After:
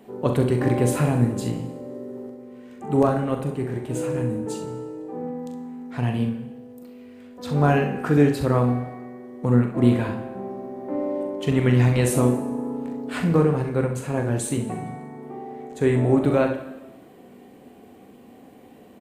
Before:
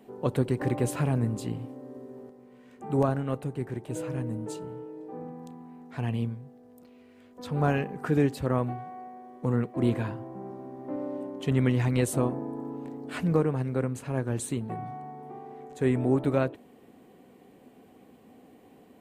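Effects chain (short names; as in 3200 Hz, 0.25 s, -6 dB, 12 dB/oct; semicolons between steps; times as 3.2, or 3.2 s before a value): on a send: early reflections 41 ms -8 dB, 65 ms -10 dB; on the sum: plate-style reverb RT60 1.1 s, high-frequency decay 0.95×, DRR 8 dB; gain +5 dB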